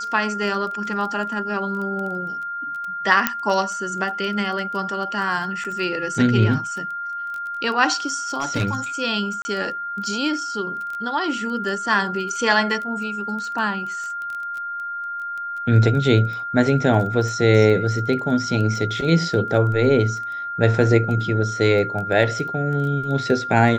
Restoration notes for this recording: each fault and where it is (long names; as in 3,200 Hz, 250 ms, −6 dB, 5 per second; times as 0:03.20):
surface crackle 12 per second −28 dBFS
whistle 1,400 Hz −26 dBFS
0:03.27: click −1 dBFS
0:05.64–0:05.65: drop-out 6.5 ms
0:08.37–0:08.75: clipping −16.5 dBFS
0:09.42–0:09.45: drop-out 30 ms